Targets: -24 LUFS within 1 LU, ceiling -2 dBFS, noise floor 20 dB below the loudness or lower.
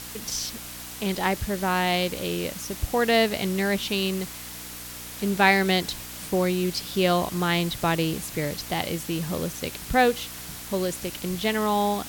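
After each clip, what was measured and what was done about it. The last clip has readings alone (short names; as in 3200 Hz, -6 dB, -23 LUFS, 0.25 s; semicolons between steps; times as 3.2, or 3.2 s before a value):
hum 60 Hz; harmonics up to 300 Hz; hum level -46 dBFS; noise floor -39 dBFS; noise floor target -46 dBFS; loudness -25.5 LUFS; peak -4.5 dBFS; loudness target -24.0 LUFS
-> de-hum 60 Hz, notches 5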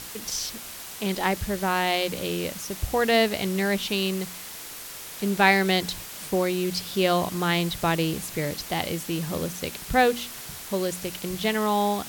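hum none; noise floor -39 dBFS; noise floor target -46 dBFS
-> denoiser 7 dB, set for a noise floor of -39 dBFS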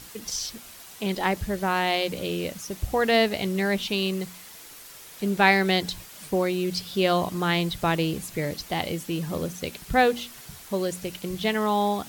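noise floor -45 dBFS; noise floor target -46 dBFS
-> denoiser 6 dB, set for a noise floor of -45 dBFS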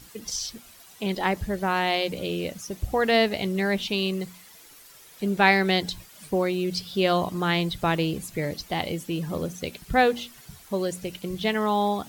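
noise floor -50 dBFS; loudness -26.0 LUFS; peak -4.5 dBFS; loudness target -24.0 LUFS
-> gain +2 dB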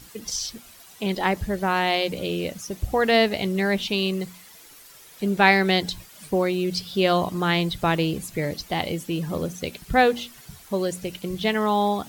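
loudness -24.0 LUFS; peak -2.5 dBFS; noise floor -48 dBFS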